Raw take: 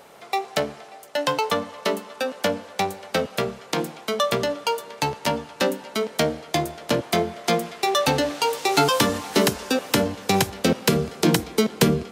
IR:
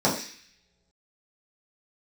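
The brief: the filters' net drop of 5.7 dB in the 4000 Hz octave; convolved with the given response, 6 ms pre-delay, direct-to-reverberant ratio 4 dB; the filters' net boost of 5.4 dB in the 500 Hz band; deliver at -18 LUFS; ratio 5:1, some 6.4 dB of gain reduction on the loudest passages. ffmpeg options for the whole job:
-filter_complex "[0:a]equalizer=f=500:t=o:g=6.5,equalizer=f=4k:t=o:g=-7.5,acompressor=threshold=-18dB:ratio=5,asplit=2[a][b];[1:a]atrim=start_sample=2205,adelay=6[c];[b][c]afir=irnorm=-1:irlink=0,volume=-20dB[d];[a][d]amix=inputs=2:normalize=0,volume=4dB"

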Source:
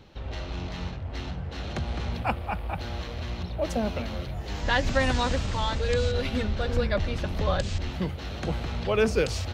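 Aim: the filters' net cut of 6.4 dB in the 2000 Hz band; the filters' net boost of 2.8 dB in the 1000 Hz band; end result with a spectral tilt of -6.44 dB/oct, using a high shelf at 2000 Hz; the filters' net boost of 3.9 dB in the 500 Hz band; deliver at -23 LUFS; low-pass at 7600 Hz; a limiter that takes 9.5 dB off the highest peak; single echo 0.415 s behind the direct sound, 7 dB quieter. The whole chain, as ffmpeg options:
-af "lowpass=7.6k,equalizer=f=500:t=o:g=4,equalizer=f=1k:t=o:g=5,highshelf=f=2k:g=-6.5,equalizer=f=2k:t=o:g=-7,alimiter=limit=-19dB:level=0:latency=1,aecho=1:1:415:0.447,volume=7dB"

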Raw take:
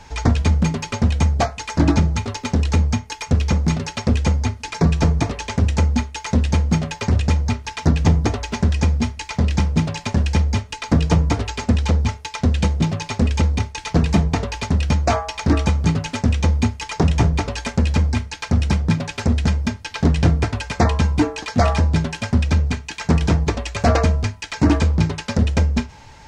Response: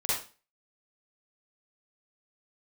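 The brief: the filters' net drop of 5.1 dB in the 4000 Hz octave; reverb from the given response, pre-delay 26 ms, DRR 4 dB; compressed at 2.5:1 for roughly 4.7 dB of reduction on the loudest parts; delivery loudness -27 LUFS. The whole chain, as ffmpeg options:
-filter_complex "[0:a]equalizer=f=4k:t=o:g=-7,acompressor=threshold=-18dB:ratio=2.5,asplit=2[a][b];[1:a]atrim=start_sample=2205,adelay=26[c];[b][c]afir=irnorm=-1:irlink=0,volume=-12.5dB[d];[a][d]amix=inputs=2:normalize=0,volume=-6.5dB"

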